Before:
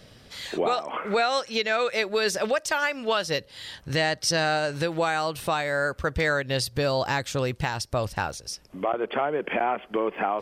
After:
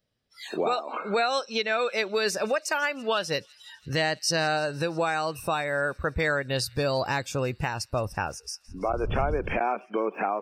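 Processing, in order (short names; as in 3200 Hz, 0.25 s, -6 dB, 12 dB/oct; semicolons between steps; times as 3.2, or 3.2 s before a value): 8.67–9.57 wind noise 84 Hz -30 dBFS; spectral noise reduction 27 dB; thin delay 0.167 s, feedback 79%, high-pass 3100 Hz, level -23 dB; gain -1.5 dB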